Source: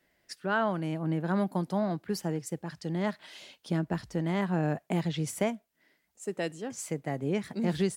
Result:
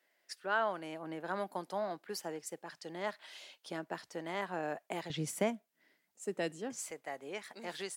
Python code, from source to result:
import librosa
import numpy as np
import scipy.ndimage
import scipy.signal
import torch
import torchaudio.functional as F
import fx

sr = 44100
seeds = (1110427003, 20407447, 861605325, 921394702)

y = fx.highpass(x, sr, hz=fx.steps((0.0, 480.0), (5.1, 170.0), (6.91, 680.0)), slope=12)
y = y * 10.0 ** (-3.0 / 20.0)